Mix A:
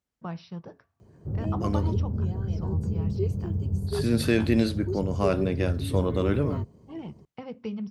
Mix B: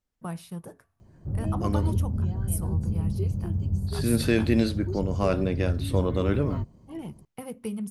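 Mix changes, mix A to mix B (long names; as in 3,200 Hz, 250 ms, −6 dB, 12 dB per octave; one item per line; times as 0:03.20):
first voice: remove Chebyshev low-pass filter 5,800 Hz, order 10
background: add parametric band 430 Hz −10.5 dB 0.29 octaves
master: remove high-pass filter 64 Hz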